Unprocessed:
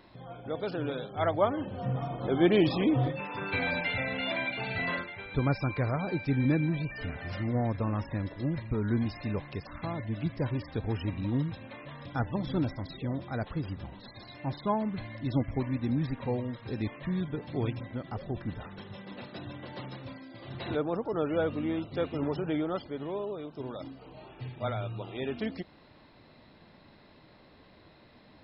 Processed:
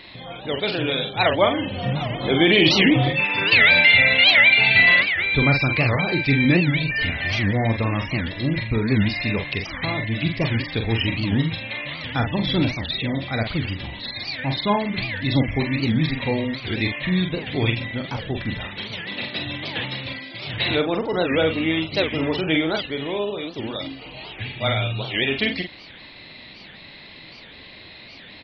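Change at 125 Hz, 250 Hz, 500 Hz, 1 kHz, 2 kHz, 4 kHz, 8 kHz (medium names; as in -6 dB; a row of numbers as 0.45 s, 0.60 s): +8.5 dB, +8.0 dB, +8.0 dB, +8.5 dB, +19.5 dB, +21.5 dB, no reading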